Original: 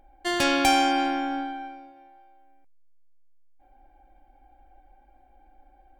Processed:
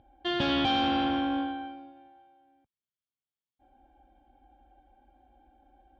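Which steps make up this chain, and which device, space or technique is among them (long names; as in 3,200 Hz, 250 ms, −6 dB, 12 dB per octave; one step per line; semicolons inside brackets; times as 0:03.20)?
guitar amplifier (tube saturation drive 25 dB, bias 0.65; bass and treble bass +14 dB, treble −4 dB; loudspeaker in its box 100–4,200 Hz, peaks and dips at 180 Hz −5 dB, 2,100 Hz −7 dB, 3,300 Hz +10 dB)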